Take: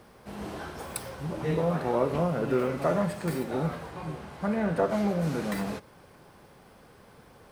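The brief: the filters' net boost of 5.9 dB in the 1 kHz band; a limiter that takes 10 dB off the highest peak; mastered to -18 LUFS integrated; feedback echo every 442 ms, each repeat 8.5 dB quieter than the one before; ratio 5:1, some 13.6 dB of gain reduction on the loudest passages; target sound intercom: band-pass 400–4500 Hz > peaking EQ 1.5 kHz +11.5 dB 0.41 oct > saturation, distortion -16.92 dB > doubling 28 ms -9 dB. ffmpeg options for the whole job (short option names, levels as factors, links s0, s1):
-filter_complex "[0:a]equalizer=f=1000:t=o:g=5,acompressor=threshold=0.0178:ratio=5,alimiter=level_in=1.88:limit=0.0631:level=0:latency=1,volume=0.531,highpass=400,lowpass=4500,equalizer=f=1500:t=o:w=0.41:g=11.5,aecho=1:1:442|884|1326|1768:0.376|0.143|0.0543|0.0206,asoftclip=threshold=0.0224,asplit=2[s0][s1];[s1]adelay=28,volume=0.355[s2];[s0][s2]amix=inputs=2:normalize=0,volume=14.1"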